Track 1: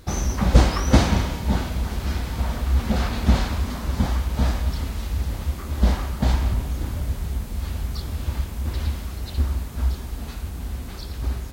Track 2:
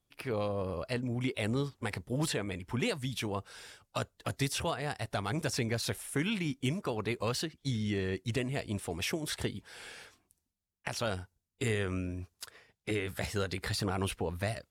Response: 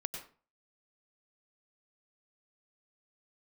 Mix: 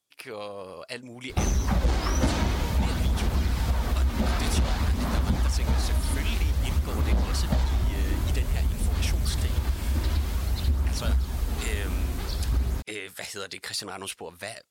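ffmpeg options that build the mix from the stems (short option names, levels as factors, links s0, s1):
-filter_complex "[0:a]aphaser=in_gain=1:out_gain=1:delay=3.3:decay=0.3:speed=0.52:type=sinusoidal,adelay=1300,volume=1.33[s0];[1:a]highpass=f=500:p=1,equalizer=f=7300:t=o:w=2.5:g=7,volume=0.944[s1];[s0][s1]amix=inputs=2:normalize=0,asoftclip=type=tanh:threshold=0.531,acompressor=threshold=0.0891:ratio=5"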